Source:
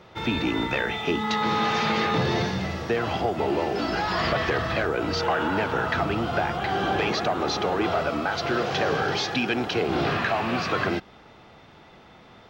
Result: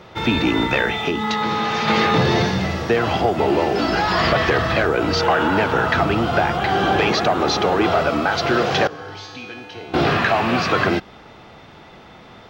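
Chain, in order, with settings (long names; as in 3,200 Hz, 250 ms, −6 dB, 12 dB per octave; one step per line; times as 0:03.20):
0:00.88–0:01.88: downward compressor, threshold −25 dBFS, peak gain reduction 5.5 dB
0:08.87–0:09.94: tuned comb filter 99 Hz, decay 1.2 s, harmonics odd, mix 90%
level +7 dB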